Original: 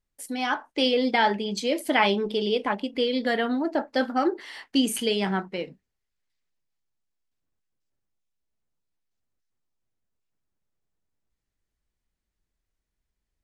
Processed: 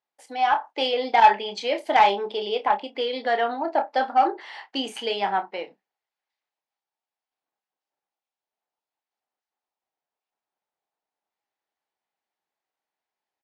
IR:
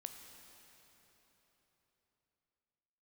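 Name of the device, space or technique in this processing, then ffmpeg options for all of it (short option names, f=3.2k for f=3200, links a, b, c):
intercom: -filter_complex "[0:a]highpass=460,lowpass=4.4k,equalizer=f=810:t=o:w=0.59:g=11.5,asoftclip=type=tanh:threshold=-9dB,asplit=2[a][b];[b]adelay=30,volume=-11dB[c];[a][c]amix=inputs=2:normalize=0,asettb=1/sr,asplit=3[d][e][f];[d]atrim=end=1.204[g];[e]atrim=start=1.2:end=1.79,asetpts=PTS-STARTPTS,afade=t=in:d=0.004:c=qsin,afade=t=out:st=0.586:d=0.004:c=qsin,adynamicequalizer=threshold=0.0316:dfrequency=1800:dqfactor=0.79:tfrequency=1800:tqfactor=0.79:attack=5:release=100:ratio=0.375:range=3.5:mode=boostabove:tftype=bell[h];[f]atrim=start=1.786[i];[g][h]acrossfade=d=0.004:c1=hsin:c2=qsin[j];[j][i]acrossfade=d=0.004:c1=qsin:c2=hsin"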